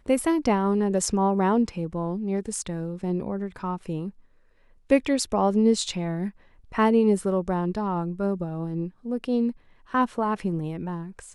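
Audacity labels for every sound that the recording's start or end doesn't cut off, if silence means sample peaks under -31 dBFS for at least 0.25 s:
4.900000	6.290000	sound
6.740000	9.510000	sound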